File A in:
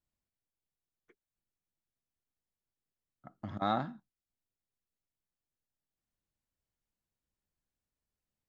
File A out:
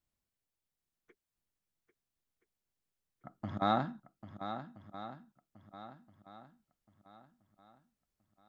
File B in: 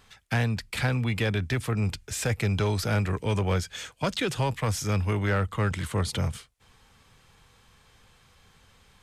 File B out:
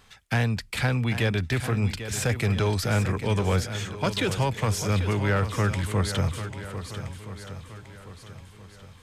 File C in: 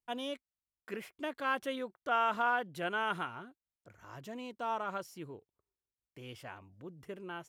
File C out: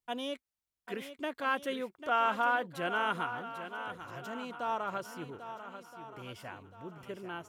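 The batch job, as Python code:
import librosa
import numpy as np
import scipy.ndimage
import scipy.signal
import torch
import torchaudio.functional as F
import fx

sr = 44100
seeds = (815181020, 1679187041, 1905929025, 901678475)

y = fx.echo_swing(x, sr, ms=1323, ratio=1.5, feedback_pct=34, wet_db=-10.5)
y = F.gain(torch.from_numpy(y), 1.5).numpy()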